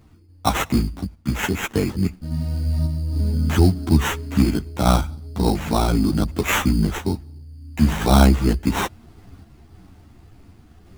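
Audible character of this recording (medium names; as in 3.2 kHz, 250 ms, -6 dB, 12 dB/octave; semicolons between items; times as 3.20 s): random-step tremolo; aliases and images of a low sample rate 4.7 kHz, jitter 0%; a shimmering, thickened sound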